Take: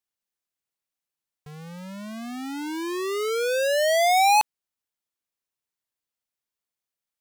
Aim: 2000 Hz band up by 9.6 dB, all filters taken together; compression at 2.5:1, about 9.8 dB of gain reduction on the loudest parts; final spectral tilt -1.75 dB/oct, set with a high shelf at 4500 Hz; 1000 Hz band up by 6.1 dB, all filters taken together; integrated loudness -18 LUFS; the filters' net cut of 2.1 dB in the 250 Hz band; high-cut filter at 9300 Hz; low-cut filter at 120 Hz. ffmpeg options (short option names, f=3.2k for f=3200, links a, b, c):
-af "highpass=120,lowpass=9.3k,equalizer=f=250:t=o:g=-3.5,equalizer=f=1k:t=o:g=7.5,equalizer=f=2k:t=o:g=8,highshelf=f=4.5k:g=8,acompressor=threshold=-23dB:ratio=2.5,volume=7dB"